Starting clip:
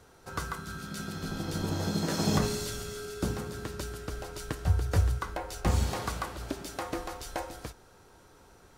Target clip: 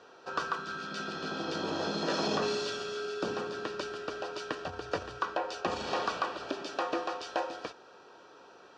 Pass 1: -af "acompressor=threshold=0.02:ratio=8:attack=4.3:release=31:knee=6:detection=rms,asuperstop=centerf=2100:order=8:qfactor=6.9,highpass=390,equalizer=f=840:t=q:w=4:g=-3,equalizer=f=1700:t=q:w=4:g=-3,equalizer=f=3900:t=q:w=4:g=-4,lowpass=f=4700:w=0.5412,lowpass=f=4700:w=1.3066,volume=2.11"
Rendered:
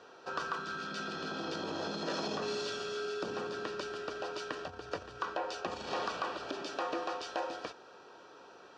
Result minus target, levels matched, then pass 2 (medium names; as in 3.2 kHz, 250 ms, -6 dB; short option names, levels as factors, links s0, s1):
compression: peak gain reduction +7 dB
-af "acompressor=threshold=0.0501:ratio=8:attack=4.3:release=31:knee=6:detection=rms,asuperstop=centerf=2100:order=8:qfactor=6.9,highpass=390,equalizer=f=840:t=q:w=4:g=-3,equalizer=f=1700:t=q:w=4:g=-3,equalizer=f=3900:t=q:w=4:g=-4,lowpass=f=4700:w=0.5412,lowpass=f=4700:w=1.3066,volume=2.11"